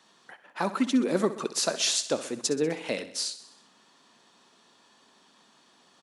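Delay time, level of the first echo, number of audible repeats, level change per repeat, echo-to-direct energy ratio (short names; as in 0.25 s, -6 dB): 64 ms, -14.0 dB, 5, -4.5 dB, -12.0 dB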